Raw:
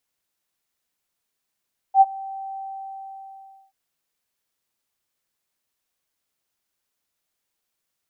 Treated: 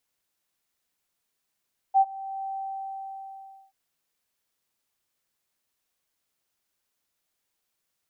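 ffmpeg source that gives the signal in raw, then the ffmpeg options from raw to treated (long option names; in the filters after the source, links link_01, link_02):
-f lavfi -i "aevalsrc='0.447*sin(2*PI*777*t)':duration=1.78:sample_rate=44100,afade=type=in:duration=0.071,afade=type=out:start_time=0.071:duration=0.035:silence=0.0708,afade=type=out:start_time=0.63:duration=1.15"
-af "alimiter=limit=-15dB:level=0:latency=1:release=418"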